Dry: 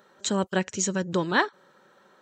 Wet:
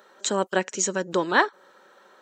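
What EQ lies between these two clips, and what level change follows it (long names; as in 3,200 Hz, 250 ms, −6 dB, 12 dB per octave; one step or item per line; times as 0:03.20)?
high-pass filter 330 Hz 12 dB per octave
dynamic equaliser 3,700 Hz, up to −4 dB, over −41 dBFS, Q 0.73
+4.5 dB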